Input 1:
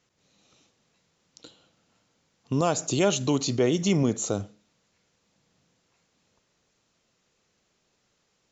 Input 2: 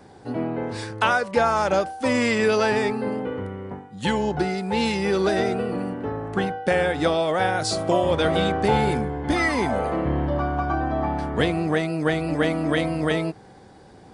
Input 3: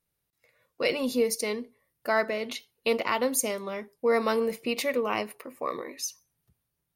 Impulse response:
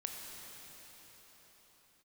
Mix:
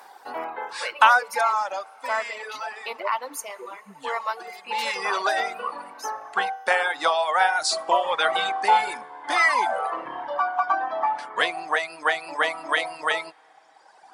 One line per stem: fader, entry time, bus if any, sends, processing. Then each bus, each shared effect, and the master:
−3.0 dB, 0.00 s, no send, every bin expanded away from the loudest bin 4 to 1
+2.0 dB, 0.00 s, send −16.5 dB, automatic ducking −18 dB, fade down 1.55 s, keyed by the first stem
−5.0 dB, 0.00 s, send −3 dB, high-shelf EQ 3,900 Hz −7 dB; upward compression, threshold −37 dBFS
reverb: on, pre-delay 19 ms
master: high-pass with resonance 950 Hz, resonance Q 2.1; reverb reduction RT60 1.8 s

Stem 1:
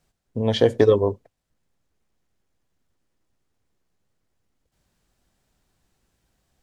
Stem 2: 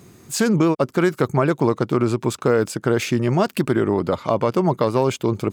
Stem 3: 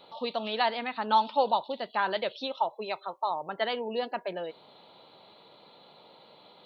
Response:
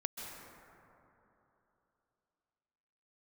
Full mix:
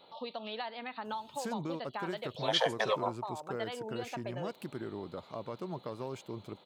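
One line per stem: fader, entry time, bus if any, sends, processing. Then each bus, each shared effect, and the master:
−1.5 dB, 2.00 s, no send, Butterworth high-pass 600 Hz 48 dB per octave
−14.5 dB, 1.05 s, no send, automatic ducking −7 dB, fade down 1.70 s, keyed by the third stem
−4.5 dB, 0.00 s, no send, downward compressor 6 to 1, threshold −32 dBFS, peak gain reduction 13 dB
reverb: not used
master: no processing

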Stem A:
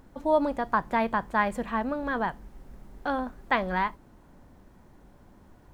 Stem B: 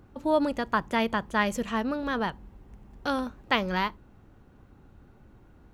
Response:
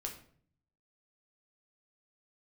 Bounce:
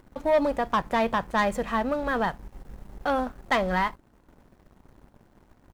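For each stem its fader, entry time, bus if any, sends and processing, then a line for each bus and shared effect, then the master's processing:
−4.0 dB, 0.00 s, no send, no processing
−11.5 dB, 1.6 ms, no send, upward compression, threshold −37 dBFS; flanger 1.4 Hz, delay 2.8 ms, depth 3.7 ms, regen +45%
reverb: not used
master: leveller curve on the samples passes 2

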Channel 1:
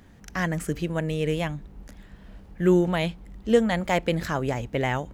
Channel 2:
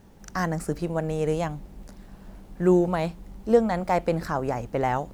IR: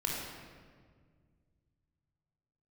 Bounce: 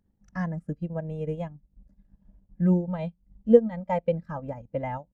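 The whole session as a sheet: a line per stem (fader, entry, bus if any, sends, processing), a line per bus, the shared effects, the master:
−4.5 dB, 0.00 s, no send, running median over 5 samples
−2.0 dB, 2.9 ms, polarity flipped, no send, no processing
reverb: not used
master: transient designer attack +3 dB, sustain −10 dB; every bin expanded away from the loudest bin 1.5 to 1

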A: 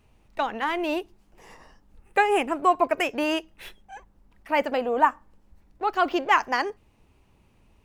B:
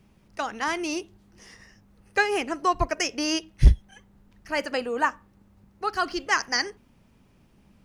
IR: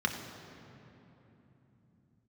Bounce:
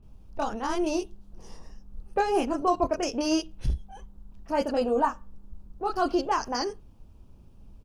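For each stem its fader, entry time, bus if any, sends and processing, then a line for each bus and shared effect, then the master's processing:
−5.0 dB, 0.00 s, no send, Gaussian smoothing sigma 1.6 samples; spectral tilt −3.5 dB per octave
−3.5 dB, 26 ms, no send, brickwall limiter −17 dBFS, peak gain reduction 10.5 dB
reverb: not used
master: parametric band 2,000 Hz −12.5 dB 0.59 octaves

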